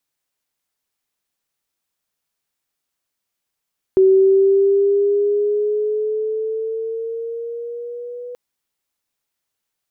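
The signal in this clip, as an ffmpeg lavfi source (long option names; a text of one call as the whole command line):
ffmpeg -f lavfi -i "aevalsrc='pow(10,(-8-20.5*t/4.38)/20)*sin(2*PI*379*4.38/(4.5*log(2)/12)*(exp(4.5*log(2)/12*t/4.38)-1))':duration=4.38:sample_rate=44100" out.wav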